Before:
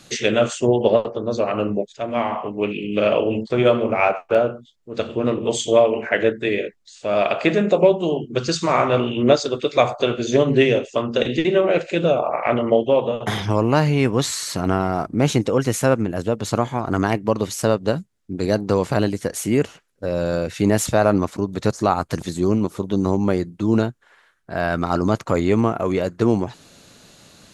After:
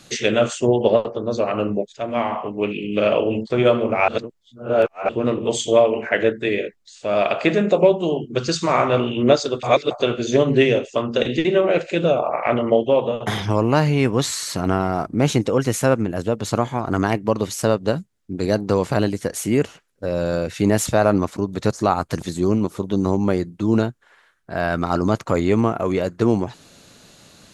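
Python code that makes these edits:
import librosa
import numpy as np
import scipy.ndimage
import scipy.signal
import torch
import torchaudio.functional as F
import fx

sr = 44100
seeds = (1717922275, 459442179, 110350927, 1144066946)

y = fx.edit(x, sr, fx.reverse_span(start_s=4.08, length_s=1.01),
    fx.reverse_span(start_s=9.63, length_s=0.28), tone=tone)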